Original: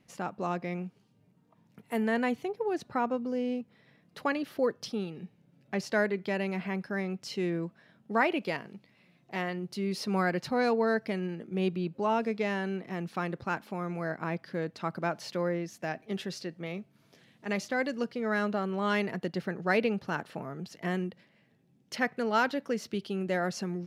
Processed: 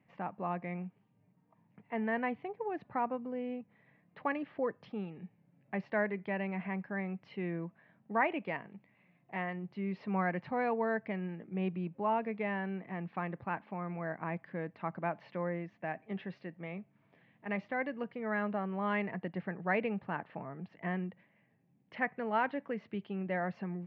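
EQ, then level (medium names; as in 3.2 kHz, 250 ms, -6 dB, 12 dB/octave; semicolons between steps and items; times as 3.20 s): cabinet simulation 110–2200 Hz, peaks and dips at 150 Hz -4 dB, 240 Hz -6 dB, 360 Hz -5 dB, 1.4 kHz -9 dB; peaking EQ 480 Hz -5.5 dB 0.93 oct; 0.0 dB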